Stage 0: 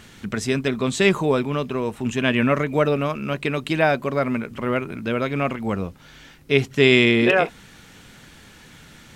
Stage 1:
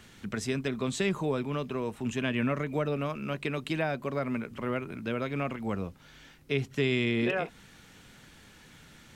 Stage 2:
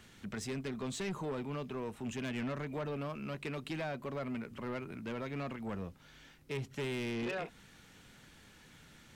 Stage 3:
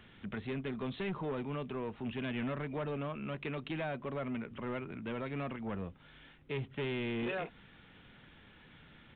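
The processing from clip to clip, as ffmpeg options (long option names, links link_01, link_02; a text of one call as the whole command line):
ffmpeg -i in.wav -filter_complex "[0:a]acrossover=split=230[link_01][link_02];[link_02]acompressor=threshold=-21dB:ratio=3[link_03];[link_01][link_03]amix=inputs=2:normalize=0,volume=-7.5dB" out.wav
ffmpeg -i in.wav -af "asoftclip=type=tanh:threshold=-28.5dB,volume=-4.5dB" out.wav
ffmpeg -i in.wav -af "aresample=8000,aresample=44100,volume=1dB" out.wav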